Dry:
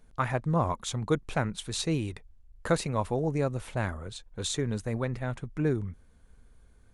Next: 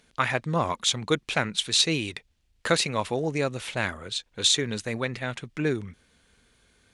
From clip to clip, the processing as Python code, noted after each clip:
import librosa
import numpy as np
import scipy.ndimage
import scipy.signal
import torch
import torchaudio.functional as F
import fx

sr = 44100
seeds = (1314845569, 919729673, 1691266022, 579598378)

y = fx.weighting(x, sr, curve='D')
y = y * 10.0 ** (2.5 / 20.0)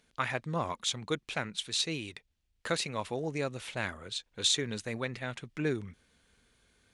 y = fx.rider(x, sr, range_db=3, speed_s=2.0)
y = y * 10.0 ** (-7.5 / 20.0)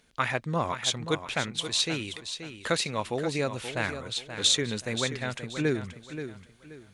y = fx.echo_feedback(x, sr, ms=529, feedback_pct=30, wet_db=-10)
y = y * 10.0 ** (4.5 / 20.0)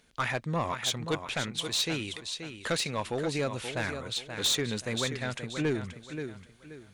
y = 10.0 ** (-21.5 / 20.0) * np.tanh(x / 10.0 ** (-21.5 / 20.0))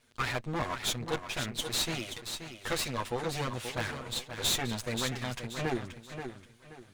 y = fx.lower_of_two(x, sr, delay_ms=8.3)